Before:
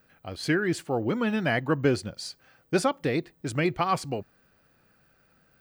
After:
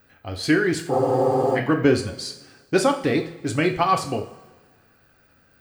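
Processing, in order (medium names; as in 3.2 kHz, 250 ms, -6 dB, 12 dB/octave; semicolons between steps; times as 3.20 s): two-slope reverb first 0.43 s, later 1.5 s, from -15 dB, DRR 4 dB; spectral freeze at 0.93 s, 0.63 s; trim +4 dB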